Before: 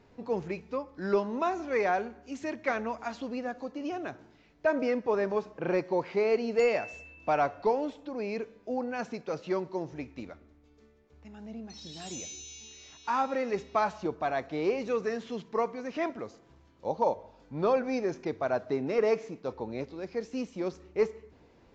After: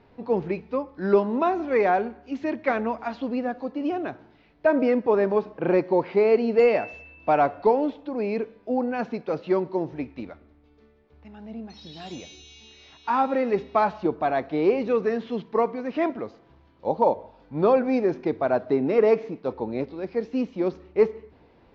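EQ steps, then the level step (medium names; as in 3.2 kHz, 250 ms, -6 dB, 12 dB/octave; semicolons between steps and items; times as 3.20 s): low-pass 4.4 kHz 24 dB/octave; dynamic bell 280 Hz, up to +6 dB, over -41 dBFS, Q 0.75; peaking EQ 820 Hz +2.5 dB; +3.0 dB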